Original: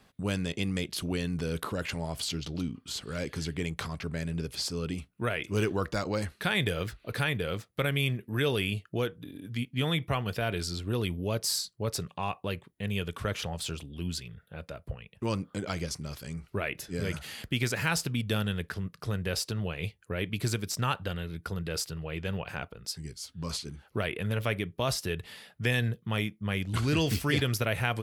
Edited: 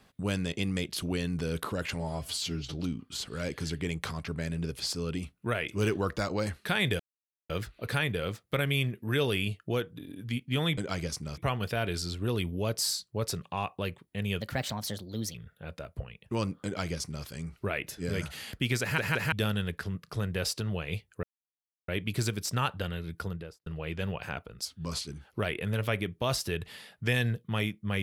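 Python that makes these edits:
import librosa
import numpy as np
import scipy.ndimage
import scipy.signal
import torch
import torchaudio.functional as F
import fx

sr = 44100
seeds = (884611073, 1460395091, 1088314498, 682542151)

y = fx.studio_fade_out(x, sr, start_s=21.45, length_s=0.47)
y = fx.edit(y, sr, fx.stretch_span(start_s=2.0, length_s=0.49, factor=1.5),
    fx.insert_silence(at_s=6.75, length_s=0.5),
    fx.speed_span(start_s=13.06, length_s=1.19, speed=1.27),
    fx.duplicate(start_s=15.56, length_s=0.6, to_s=10.03),
    fx.stutter_over(start_s=17.72, slice_s=0.17, count=3),
    fx.insert_silence(at_s=20.14, length_s=0.65),
    fx.cut(start_s=22.91, length_s=0.32), tone=tone)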